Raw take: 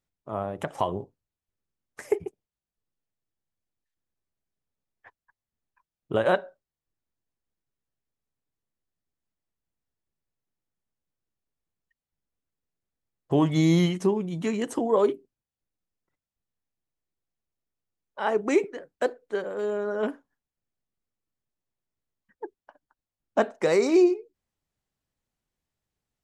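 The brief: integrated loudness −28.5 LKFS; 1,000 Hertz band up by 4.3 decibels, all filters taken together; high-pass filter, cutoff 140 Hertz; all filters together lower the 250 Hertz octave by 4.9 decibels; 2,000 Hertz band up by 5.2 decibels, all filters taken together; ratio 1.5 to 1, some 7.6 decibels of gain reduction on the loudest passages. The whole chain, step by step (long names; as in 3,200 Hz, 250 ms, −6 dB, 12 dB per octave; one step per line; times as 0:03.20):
high-pass filter 140 Hz
parametric band 250 Hz −8 dB
parametric band 1,000 Hz +5 dB
parametric band 2,000 Hz +5 dB
downward compressor 1.5 to 1, threshold −36 dBFS
level +4 dB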